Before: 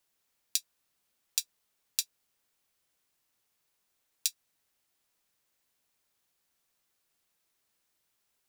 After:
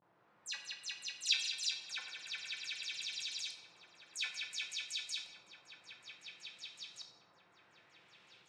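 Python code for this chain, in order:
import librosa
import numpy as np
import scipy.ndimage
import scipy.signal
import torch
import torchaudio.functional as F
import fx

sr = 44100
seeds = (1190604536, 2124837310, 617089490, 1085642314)

p1 = fx.spec_delay(x, sr, highs='early', ms=100)
p2 = fx.vibrato(p1, sr, rate_hz=0.42, depth_cents=88.0)
p3 = scipy.signal.sosfilt(scipy.signal.butter(4, 98.0, 'highpass', fs=sr, output='sos'), p2)
p4 = p3 + fx.echo_heads(p3, sr, ms=187, heads='first and second', feedback_pct=75, wet_db=-12.5, dry=0)
p5 = fx.filter_lfo_lowpass(p4, sr, shape='saw_up', hz=0.57, low_hz=940.0, high_hz=4700.0, q=1.3)
p6 = fx.over_compress(p5, sr, threshold_db=-57.0, ratio=-1.0)
p7 = p5 + (p6 * librosa.db_to_amplitude(0.0))
p8 = scipy.signal.sosfilt(scipy.signal.butter(2, 7800.0, 'lowpass', fs=sr, output='sos'), p7)
p9 = fx.room_shoebox(p8, sr, seeds[0], volume_m3=410.0, walls='mixed', distance_m=0.84)
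y = p9 * librosa.db_to_amplitude(6.5)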